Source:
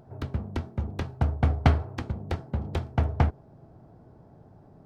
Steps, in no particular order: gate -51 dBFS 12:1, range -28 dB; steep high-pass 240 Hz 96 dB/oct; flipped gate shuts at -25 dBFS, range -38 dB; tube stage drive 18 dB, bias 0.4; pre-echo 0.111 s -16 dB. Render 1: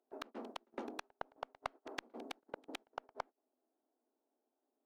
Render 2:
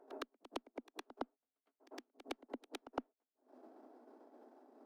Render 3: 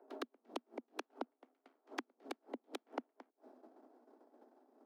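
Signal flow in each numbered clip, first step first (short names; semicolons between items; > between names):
steep high-pass > flipped gate > tube stage > pre-echo > gate; flipped gate > gate > steep high-pass > tube stage > pre-echo; tube stage > gate > pre-echo > flipped gate > steep high-pass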